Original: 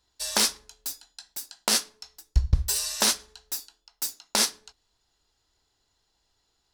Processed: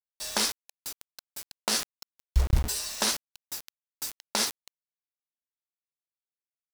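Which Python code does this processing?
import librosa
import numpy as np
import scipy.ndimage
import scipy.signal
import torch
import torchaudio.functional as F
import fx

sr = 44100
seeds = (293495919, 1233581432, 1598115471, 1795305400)

y = fx.high_shelf(x, sr, hz=4900.0, db=-4.0)
y = fx.quant_dither(y, sr, seeds[0], bits=6, dither='none')
y = fx.sustainer(y, sr, db_per_s=120.0)
y = y * 10.0 ** (-2.5 / 20.0)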